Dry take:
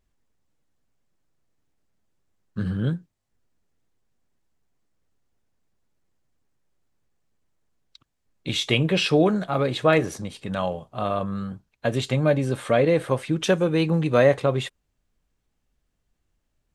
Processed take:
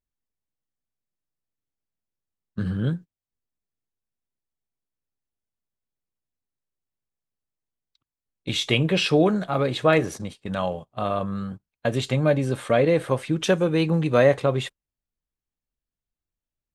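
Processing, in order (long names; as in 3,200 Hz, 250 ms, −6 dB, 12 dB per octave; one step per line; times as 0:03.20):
noise gate −35 dBFS, range −17 dB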